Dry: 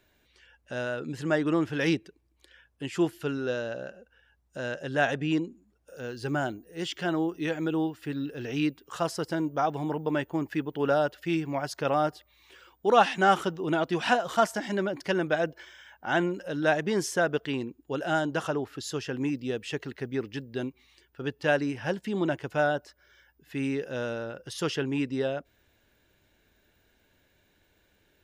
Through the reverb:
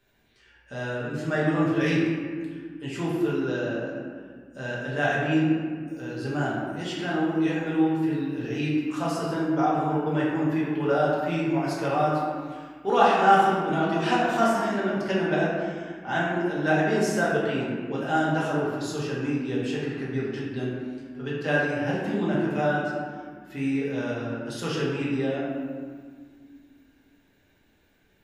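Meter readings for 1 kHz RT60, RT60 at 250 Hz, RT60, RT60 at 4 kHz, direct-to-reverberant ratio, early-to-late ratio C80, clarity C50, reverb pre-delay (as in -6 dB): 1.8 s, 3.2 s, 1.9 s, 1.0 s, -7.5 dB, 1.5 dB, -1.0 dB, 4 ms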